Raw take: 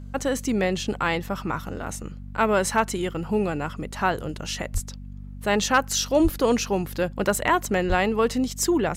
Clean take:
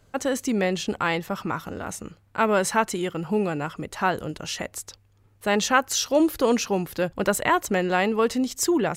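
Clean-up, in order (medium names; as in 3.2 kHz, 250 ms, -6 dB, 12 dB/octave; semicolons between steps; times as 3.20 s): clip repair -9 dBFS; de-hum 48.6 Hz, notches 5; de-plosive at 4.73/6.23/7.88 s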